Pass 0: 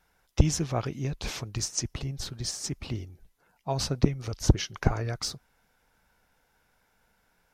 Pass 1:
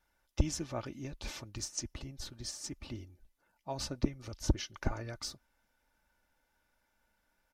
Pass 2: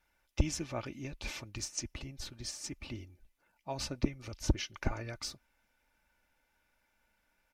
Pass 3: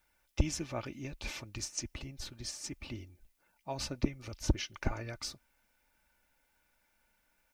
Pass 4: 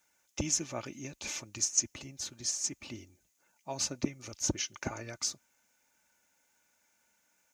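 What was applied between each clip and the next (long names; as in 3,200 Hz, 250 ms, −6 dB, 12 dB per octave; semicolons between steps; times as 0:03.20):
comb filter 3.4 ms, depth 50%; level −9 dB
parametric band 2,400 Hz +7 dB 0.54 octaves
background noise blue −80 dBFS
high-pass filter 130 Hz 12 dB per octave; parametric band 6,600 Hz +14.5 dB 0.44 octaves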